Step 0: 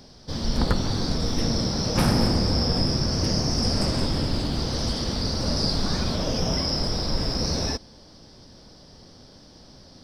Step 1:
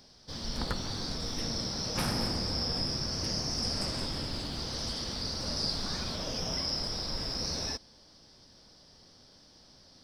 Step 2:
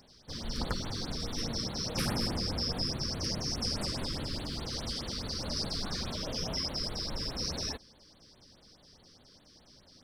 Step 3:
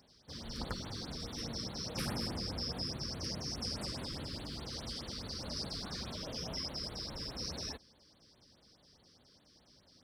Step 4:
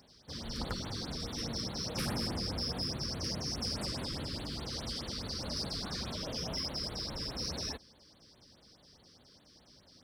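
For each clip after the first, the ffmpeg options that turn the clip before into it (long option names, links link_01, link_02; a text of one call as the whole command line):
ffmpeg -i in.wav -af "tiltshelf=frequency=860:gain=-4,volume=-9dB" out.wav
ffmpeg -i in.wav -af "afftfilt=real='re*(1-between(b*sr/1024,670*pow(6500/670,0.5+0.5*sin(2*PI*4.8*pts/sr))/1.41,670*pow(6500/670,0.5+0.5*sin(2*PI*4.8*pts/sr))*1.41))':imag='im*(1-between(b*sr/1024,670*pow(6500/670,0.5+0.5*sin(2*PI*4.8*pts/sr))/1.41,670*pow(6500/670,0.5+0.5*sin(2*PI*4.8*pts/sr))*1.41))':win_size=1024:overlap=0.75" out.wav
ffmpeg -i in.wav -af "highpass=41,equalizer=frequency=6300:width=6.7:gain=-2,volume=-5.5dB" out.wav
ffmpeg -i in.wav -af "aeval=exprs='0.0708*(cos(1*acos(clip(val(0)/0.0708,-1,1)))-cos(1*PI/2))+0.00794*(cos(5*acos(clip(val(0)/0.0708,-1,1)))-cos(5*PI/2))':channel_layout=same" out.wav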